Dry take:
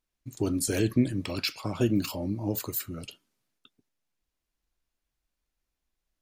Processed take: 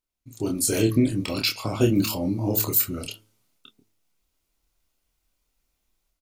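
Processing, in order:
double-tracking delay 27 ms −3.5 dB
automatic gain control gain up to 12 dB
high-shelf EQ 7,500 Hz +5 dB
notch filter 1,700 Hz, Q 7.4
hum removal 108.2 Hz, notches 8
level −5.5 dB

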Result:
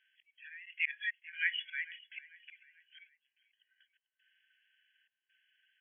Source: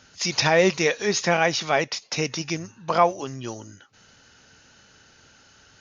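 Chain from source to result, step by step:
noise reduction from a noise print of the clip's start 14 dB
gate pattern "x..xx.xxxx.xx" 68 BPM −24 dB
volume swells 220 ms
linear-phase brick-wall band-pass 1,500–3,400 Hz
repeating echo 443 ms, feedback 43%, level −20 dB

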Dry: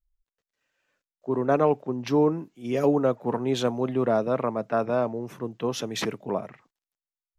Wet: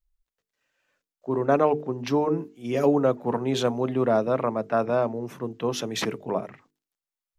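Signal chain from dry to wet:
mains-hum notches 50/100/150/200/250/300/350/400/450 Hz
level +1.5 dB

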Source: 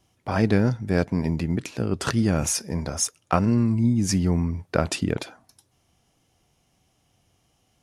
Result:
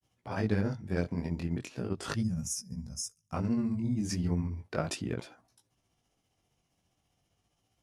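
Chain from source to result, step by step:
gain on a spectral selection 0:02.20–0:03.34, 250–4,900 Hz −20 dB
granular cloud 109 ms, grains 15 per second, spray 14 ms, pitch spread up and down by 0 semitones
chorus effect 0.37 Hz, delay 16.5 ms, depth 7.1 ms
in parallel at −11 dB: soft clipping −21.5 dBFS, distortion −12 dB
on the sum: level −6.5 dB

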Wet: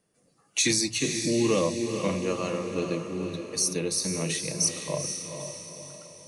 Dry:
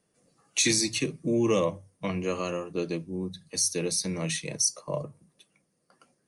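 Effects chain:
0:04.28–0:04.95: floating-point word with a short mantissa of 6 bits
feedback delay with all-pass diffusion 462 ms, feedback 49%, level −6 dB

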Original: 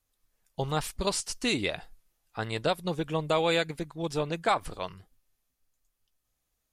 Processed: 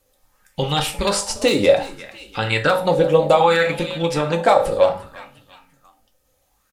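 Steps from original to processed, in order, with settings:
notch filter 680 Hz, Q 21
in parallel at +2 dB: downward compressor 6 to 1, threshold −40 dBFS, peak gain reduction 17.5 dB
on the sum: wave folding −15 dBFS
echo with shifted repeats 348 ms, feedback 39%, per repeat +42 Hz, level −18 dB
on a send at −3 dB: convolution reverb RT60 0.45 s, pre-delay 3 ms
on the sum: boost into a limiter +14 dB
auto-filter bell 0.64 Hz 500–3,100 Hz +13 dB
level −9 dB

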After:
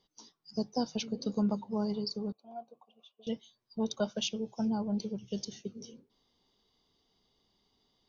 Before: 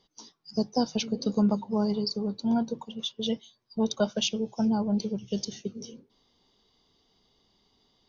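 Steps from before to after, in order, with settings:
0:02.32–0:03.27: formant filter a
level −6 dB

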